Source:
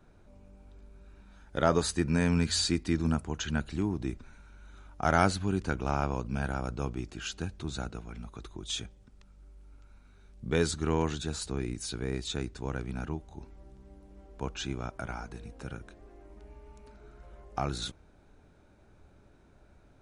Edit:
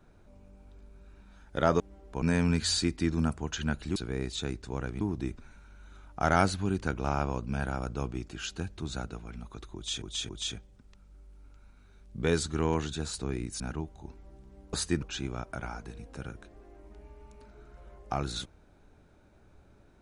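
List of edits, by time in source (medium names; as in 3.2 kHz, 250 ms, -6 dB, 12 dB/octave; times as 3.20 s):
1.80–2.09 s: swap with 14.06–14.48 s
8.57–8.84 s: loop, 3 plays
11.88–12.93 s: move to 3.83 s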